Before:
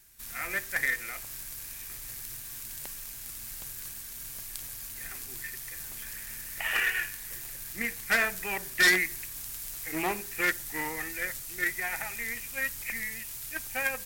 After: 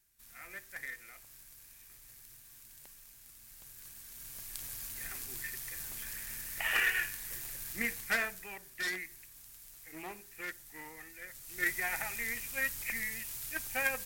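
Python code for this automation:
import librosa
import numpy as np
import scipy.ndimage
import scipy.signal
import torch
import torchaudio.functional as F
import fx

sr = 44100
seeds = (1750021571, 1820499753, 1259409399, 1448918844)

y = fx.gain(x, sr, db=fx.line((3.43, -14.5), (4.74, -2.0), (7.93, -2.0), (8.6, -14.5), (11.27, -14.5), (11.67, -2.0)))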